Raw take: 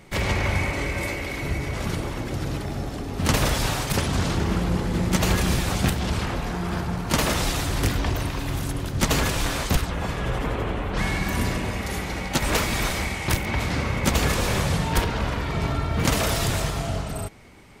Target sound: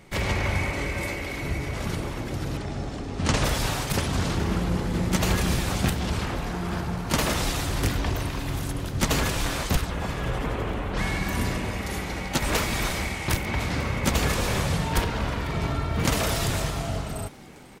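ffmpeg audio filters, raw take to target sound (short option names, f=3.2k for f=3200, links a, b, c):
-filter_complex "[0:a]asettb=1/sr,asplit=3[a][b][c];[a]atrim=end=2.574[d];[b]atrim=start=2.57:end=3.44,asetpts=PTS-STARTPTS,afade=t=in:d=0.004:c=qsin,afade=t=out:st=0.866:d=0.004:c=qsin,lowpass=f=8.6k:w=0.5412,lowpass=f=8.6k:w=1.3066[e];[c]atrim=start=3.436[f];[d][e]acrossfade=d=0.004:c1=hsin:c2=qsin[g];[g][f]acrossfade=d=0.004:c1=qsin:c2=hsin,asplit=5[h][i][j][k][l];[i]adelay=495,afreqshift=100,volume=-22dB[m];[j]adelay=990,afreqshift=200,volume=-27dB[n];[k]adelay=1485,afreqshift=300,volume=-32.1dB[o];[l]adelay=1980,afreqshift=400,volume=-37.1dB[p];[h][m][n][o][p]amix=inputs=5:normalize=0,volume=-2dB"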